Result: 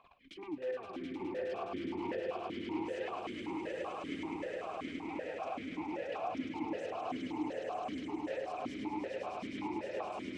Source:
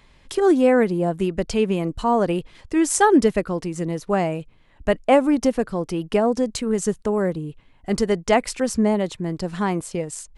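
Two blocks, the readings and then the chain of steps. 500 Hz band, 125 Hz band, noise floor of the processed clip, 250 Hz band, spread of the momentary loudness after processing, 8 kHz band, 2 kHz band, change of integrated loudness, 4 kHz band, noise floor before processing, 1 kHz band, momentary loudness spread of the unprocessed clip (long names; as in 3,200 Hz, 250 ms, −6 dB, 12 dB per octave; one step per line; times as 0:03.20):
−19.0 dB, −24.5 dB, −47 dBFS, −18.5 dB, 3 LU, below −30 dB, −16.0 dB, −18.5 dB, −15.0 dB, −54 dBFS, −16.0 dB, 11 LU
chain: sub-octave generator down 1 octave, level −2 dB
reverb reduction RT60 1.5 s
parametric band 990 Hz +9 dB 0.23 octaves
output level in coarse steps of 17 dB
brickwall limiter −18 dBFS, peak gain reduction 10 dB
downward compressor 6 to 1, threshold −39 dBFS, peak gain reduction 16 dB
wrap-around overflow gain 32.5 dB
phase shifter 1.4 Hz, delay 3.6 ms, feedback 51%
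sine wavefolder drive 11 dB, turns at −27 dBFS
high-frequency loss of the air 57 metres
on a send: echo that builds up and dies away 104 ms, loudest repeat 8, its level −5 dB
on the sum: formant filter that steps through the vowels 5.2 Hz
level −1.5 dB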